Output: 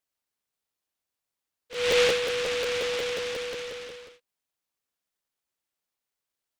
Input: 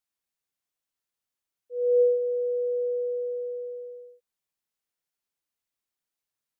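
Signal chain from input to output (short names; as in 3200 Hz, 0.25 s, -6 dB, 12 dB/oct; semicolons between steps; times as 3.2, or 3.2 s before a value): HPF 520 Hz 12 dB/oct; crackling interface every 0.18 s, samples 512, repeat, from 0.64; noise-modulated delay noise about 2400 Hz, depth 0.2 ms; gain +2.5 dB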